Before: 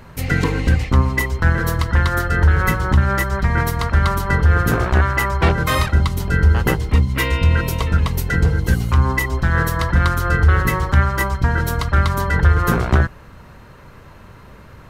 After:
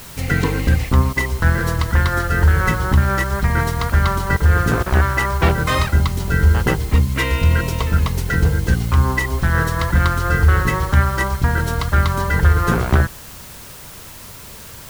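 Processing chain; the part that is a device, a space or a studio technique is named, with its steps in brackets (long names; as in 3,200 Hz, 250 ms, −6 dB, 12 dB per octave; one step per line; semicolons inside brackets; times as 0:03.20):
worn cassette (low-pass filter 9,200 Hz; tape wow and flutter 16 cents; tape dropouts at 0:01.13/0:04.37/0:04.83, 31 ms −16 dB; white noise bed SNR 22 dB)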